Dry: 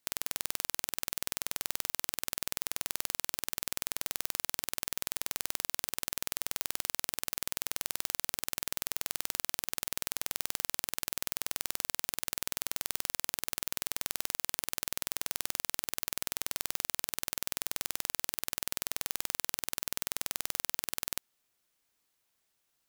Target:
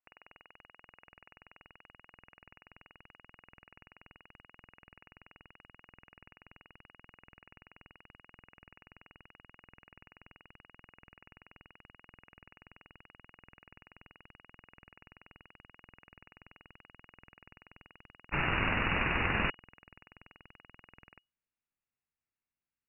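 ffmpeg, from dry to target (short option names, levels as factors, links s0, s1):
-filter_complex "[0:a]asettb=1/sr,asplit=3[s0][s1][s2];[s0]atrim=end=18.314[s3];[s1]atrim=start=18.31:end=19.5,asetpts=PTS-STARTPTS,afade=t=in:d=0.004:c=qsin,afade=t=out:st=1.186:d=0.004:c=qsin,aeval=exprs='val(0)+0.5*0.0841*sgn(val(0))':c=same[s4];[s2]atrim=start=19.496[s5];[s3][s4]acrossfade=d=0.004:c1=hsin:c2=qsin[s6];[s6][s5]acrossfade=d=0.004:c1=qsin:c2=hsin,agate=range=0.0794:threshold=0.0316:ratio=16:detection=peak,lowpass=f=2500:t=q:w=0.5098,lowpass=f=2500:t=q:w=0.6013,lowpass=f=2500:t=q:w=0.9,lowpass=f=2500:t=q:w=2.563,afreqshift=-2900,asubboost=boost=5:cutoff=240,volume=2.66"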